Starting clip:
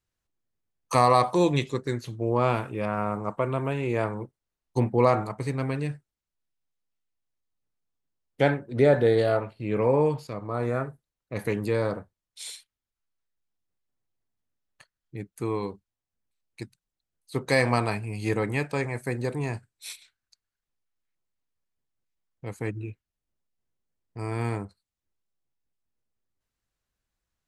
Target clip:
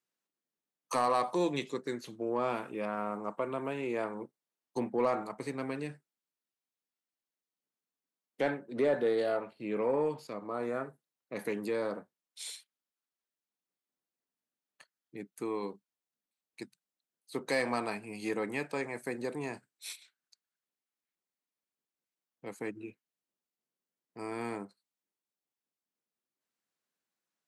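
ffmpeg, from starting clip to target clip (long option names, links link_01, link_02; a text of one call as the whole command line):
ffmpeg -i in.wav -filter_complex "[0:a]highpass=frequency=190:width=0.5412,highpass=frequency=190:width=1.3066,asplit=2[link_01][link_02];[link_02]acompressor=threshold=-31dB:ratio=6,volume=-2.5dB[link_03];[link_01][link_03]amix=inputs=2:normalize=0,asoftclip=type=tanh:threshold=-10dB,volume=-8.5dB" out.wav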